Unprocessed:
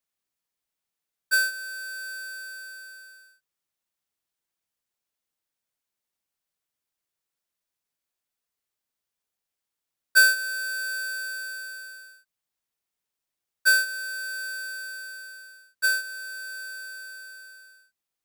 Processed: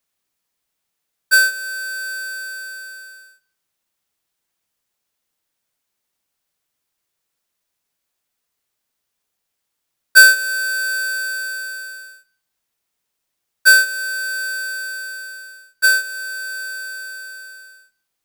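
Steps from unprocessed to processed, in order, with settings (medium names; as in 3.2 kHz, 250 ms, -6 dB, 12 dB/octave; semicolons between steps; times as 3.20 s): Schroeder reverb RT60 0.48 s, combs from 26 ms, DRR 14.5 dB; trim +9 dB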